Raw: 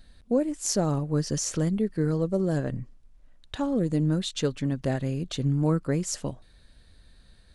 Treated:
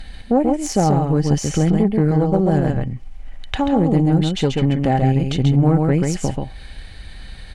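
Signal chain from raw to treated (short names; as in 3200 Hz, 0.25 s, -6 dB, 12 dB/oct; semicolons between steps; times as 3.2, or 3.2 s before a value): bell 2200 Hz +9 dB 0.54 oct; in parallel at +3 dB: compressor, threshold -38 dBFS, peak gain reduction 18 dB; on the sum: tilt -2 dB/oct; on a send: echo 0.135 s -4 dB; on the sum: tube stage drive 11 dB, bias 0.5; small resonant body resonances 790/3000 Hz, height 15 dB, ringing for 70 ms; mismatched tape noise reduction encoder only; gain +4 dB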